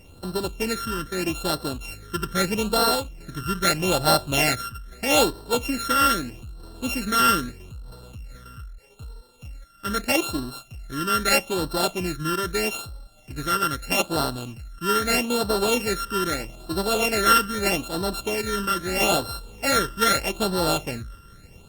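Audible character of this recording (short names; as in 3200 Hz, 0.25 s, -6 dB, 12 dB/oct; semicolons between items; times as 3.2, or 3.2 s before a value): a buzz of ramps at a fixed pitch in blocks of 32 samples; phasing stages 12, 0.79 Hz, lowest notch 730–2300 Hz; Opus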